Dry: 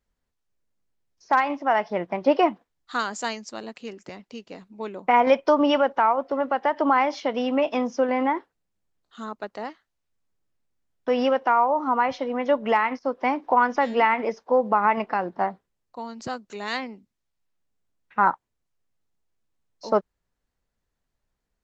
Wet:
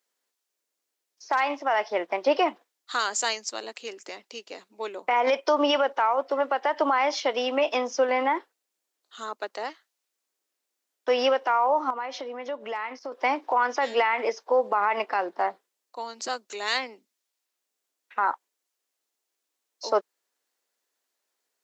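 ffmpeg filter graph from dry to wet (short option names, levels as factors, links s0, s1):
-filter_complex "[0:a]asettb=1/sr,asplit=3[s0][s1][s2];[s0]atrim=end=11.904[s3];[s1]atrim=start=11.9:end=13.12,asetpts=PTS-STARTPTS,afade=t=in:d=0.004:c=qsin,afade=t=out:st=1.216:d=0.004:c=qsin,lowshelf=f=340:g=6.5,acompressor=threshold=0.0224:ratio=3:attack=3.2:release=140:knee=1:detection=peak[s4];[s2]atrim=start=13.116[s5];[s3][s4]acrossfade=d=0.004:c1=hsin:c2=qsin[s6];[s6][s5]acrossfade=d=0.004:c1=qsin:c2=hsin,highpass=f=330:w=0.5412,highpass=f=330:w=1.3066,highshelf=f=2900:g=10.5,alimiter=limit=0.211:level=0:latency=1:release=37"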